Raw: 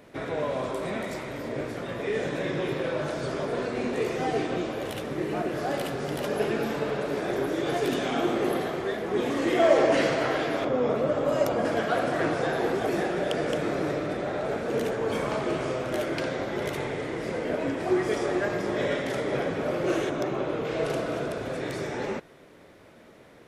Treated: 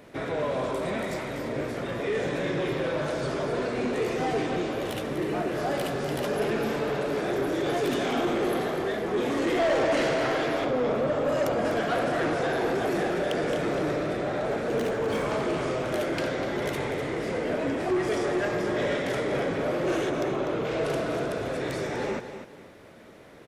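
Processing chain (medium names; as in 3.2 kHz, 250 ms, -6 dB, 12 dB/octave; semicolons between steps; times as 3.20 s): 14.79–15.23 s: median filter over 3 samples; feedback delay 247 ms, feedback 27%, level -11 dB; saturation -22 dBFS, distortion -13 dB; trim +2 dB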